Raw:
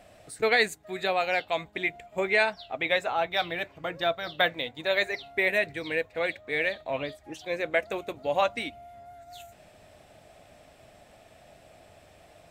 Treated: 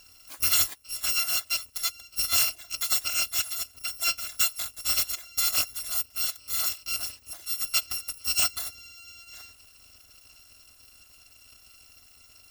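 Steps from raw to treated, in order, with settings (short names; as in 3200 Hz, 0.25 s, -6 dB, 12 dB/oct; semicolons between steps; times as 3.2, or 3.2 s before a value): FFT order left unsorted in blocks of 256 samples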